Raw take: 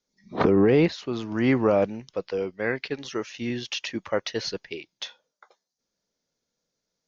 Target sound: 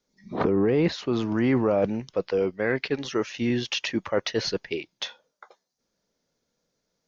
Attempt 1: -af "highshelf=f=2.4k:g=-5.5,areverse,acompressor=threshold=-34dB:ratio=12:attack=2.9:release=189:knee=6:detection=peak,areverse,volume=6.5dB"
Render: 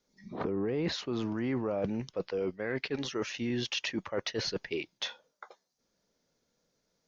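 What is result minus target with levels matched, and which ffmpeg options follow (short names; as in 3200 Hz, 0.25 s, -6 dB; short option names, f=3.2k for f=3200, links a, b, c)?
compressor: peak gain reduction +10 dB
-af "highshelf=f=2.4k:g=-5.5,areverse,acompressor=threshold=-23dB:ratio=12:attack=2.9:release=189:knee=6:detection=peak,areverse,volume=6.5dB"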